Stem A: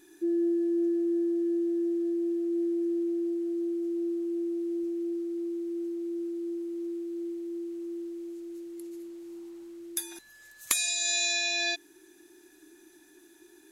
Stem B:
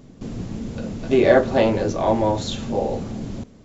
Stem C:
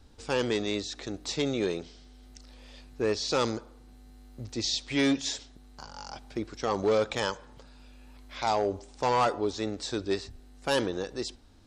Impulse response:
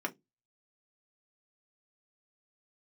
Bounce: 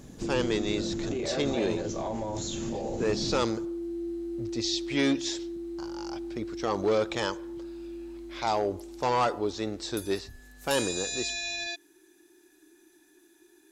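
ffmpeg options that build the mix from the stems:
-filter_complex "[0:a]volume=-3.5dB[a];[1:a]equalizer=f=6.8k:t=o:w=0.54:g=11,volume=-2.5dB[b];[2:a]lowpass=9.3k,volume=-0.5dB[c];[a][b]amix=inputs=2:normalize=0,alimiter=level_in=1dB:limit=-24dB:level=0:latency=1:release=101,volume=-1dB,volume=0dB[d];[c][d]amix=inputs=2:normalize=0"

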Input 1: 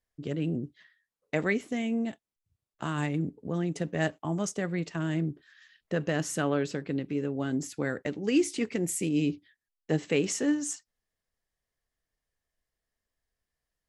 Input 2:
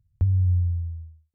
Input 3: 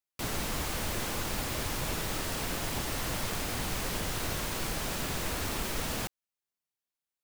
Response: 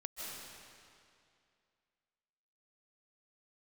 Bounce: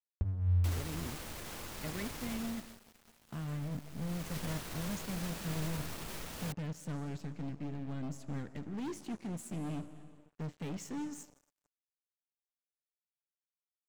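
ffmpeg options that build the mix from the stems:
-filter_complex "[0:a]asubboost=boost=6:cutoff=210,asoftclip=type=hard:threshold=-24dB,highshelf=f=5.8k:g=-2.5,adelay=500,volume=-12.5dB,asplit=3[a][b][c];[b]volume=-10.5dB[d];[c]volume=-23.5dB[e];[1:a]flanger=delay=3.6:depth=2.2:regen=-35:speed=1.7:shape=triangular,volume=-1.5dB[f];[2:a]alimiter=level_in=1.5dB:limit=-24dB:level=0:latency=1:release=21,volume=-1.5dB,adelay=450,volume=6dB,afade=t=out:st=2.31:d=0.48:silence=0.223872,afade=t=in:st=3.96:d=0.4:silence=0.223872[g];[3:a]atrim=start_sample=2205[h];[d][h]afir=irnorm=-1:irlink=0[i];[e]aecho=0:1:82|164|246|328|410|492|574:1|0.47|0.221|0.104|0.0488|0.0229|0.0108[j];[a][f][g][i][j]amix=inputs=5:normalize=0,aeval=exprs='sgn(val(0))*max(abs(val(0))-0.00282,0)':c=same"

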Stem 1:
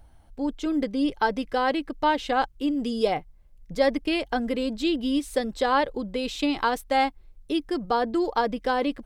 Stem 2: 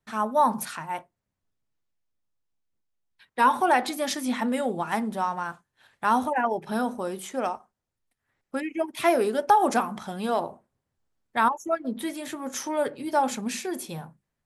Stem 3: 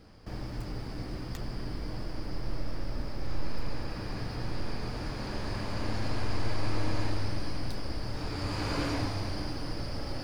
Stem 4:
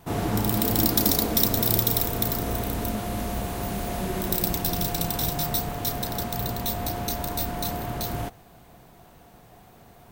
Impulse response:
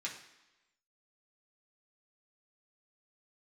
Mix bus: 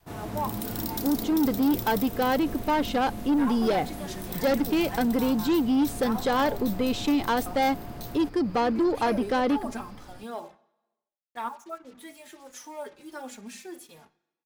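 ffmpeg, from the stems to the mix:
-filter_complex "[0:a]adelay=650,volume=1dB[a];[1:a]highpass=f=170:p=1,acrusher=bits=6:mix=0:aa=0.5,asplit=2[b][c];[c]adelay=3.5,afreqshift=-1.6[d];[b][d]amix=inputs=2:normalize=1,volume=-9.5dB,asplit=3[e][f][g];[e]atrim=end=6.59,asetpts=PTS-STARTPTS,afade=t=out:st=6.586:d=0.004:c=hsin[h];[f]atrim=start=6.59:end=7.46,asetpts=PTS-STARTPTS,volume=0[i];[g]atrim=start=7.46,asetpts=PTS-STARTPTS,afade=t=in:d=0.004:c=hsin[j];[h][i][j]concat=n=3:v=0:a=1,asplit=2[k][l];[l]volume=-10dB[m];[2:a]acrossover=split=3700[n][o];[o]acompressor=threshold=-53dB:ratio=4:attack=1:release=60[p];[n][p]amix=inputs=2:normalize=0,volume=-13dB[q];[3:a]volume=-10.5dB[r];[4:a]atrim=start_sample=2205[s];[m][s]afir=irnorm=-1:irlink=0[t];[a][k][q][r][t]amix=inputs=5:normalize=0,adynamicequalizer=threshold=0.0158:dfrequency=240:dqfactor=1:tfrequency=240:tqfactor=1:attack=5:release=100:ratio=0.375:range=3:mode=boostabove:tftype=bell,asoftclip=type=tanh:threshold=-18.5dB"

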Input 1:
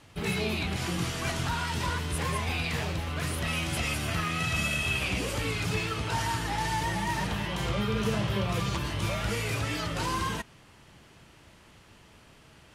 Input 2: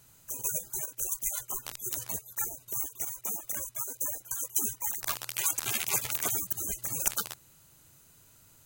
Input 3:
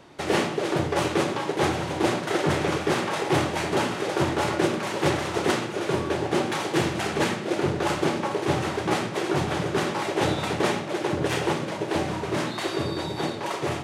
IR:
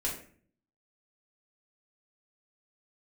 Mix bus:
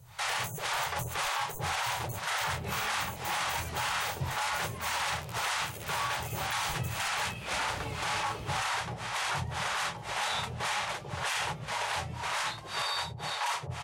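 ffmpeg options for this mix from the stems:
-filter_complex "[0:a]adelay=2400,volume=-10.5dB,afade=t=out:st=8.49:d=0.22:silence=0.298538[a];[1:a]lowshelf=f=170:t=q:w=3:g=12,alimiter=limit=-14.5dB:level=0:latency=1:release=358,volume=-6dB[b];[2:a]firequalizer=gain_entry='entry(120,0);entry(290,-26);entry(450,-8);entry(860,9);entry(10000,12);entry(15000,8)':delay=0.05:min_phase=1,acrossover=split=440[c][d];[c]aeval=exprs='val(0)*(1-1/2+1/2*cos(2*PI*1.9*n/s))':c=same[e];[d]aeval=exprs='val(0)*(1-1/2-1/2*cos(2*PI*1.9*n/s))':c=same[f];[e][f]amix=inputs=2:normalize=0,volume=-2.5dB[g];[a][b]amix=inputs=2:normalize=0,alimiter=level_in=4dB:limit=-24dB:level=0:latency=1:release=483,volume=-4dB,volume=0dB[h];[g][h]amix=inputs=2:normalize=0,alimiter=limit=-23dB:level=0:latency=1:release=12"

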